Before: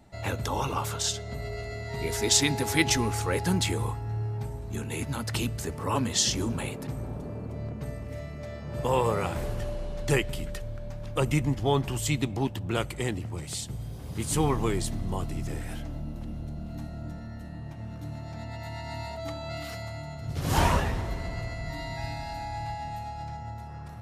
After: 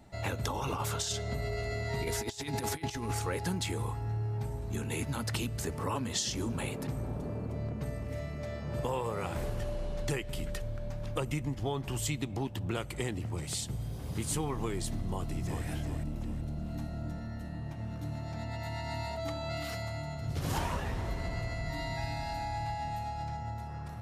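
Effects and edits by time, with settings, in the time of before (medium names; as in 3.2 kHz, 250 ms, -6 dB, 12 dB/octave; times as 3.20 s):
0.44–3.19 s: compressor with a negative ratio -30 dBFS, ratio -0.5
15.02–15.65 s: echo throw 380 ms, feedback 35%, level -7 dB
whole clip: compression 6:1, threshold -30 dBFS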